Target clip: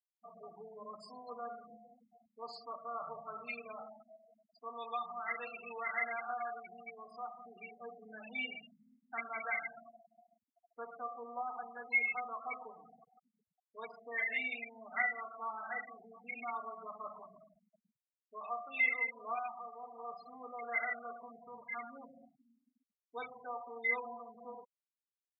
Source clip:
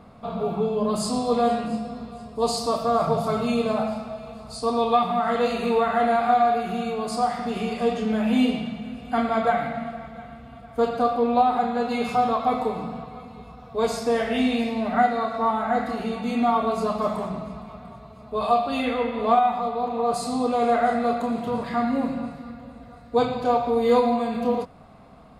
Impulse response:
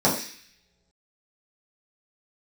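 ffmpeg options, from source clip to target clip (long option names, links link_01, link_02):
-af "afftfilt=real='re*gte(hypot(re,im),0.0708)':imag='im*gte(hypot(re,im),0.0708)':win_size=1024:overlap=0.75,bandpass=frequency=2100:width_type=q:width=19:csg=0,volume=12dB"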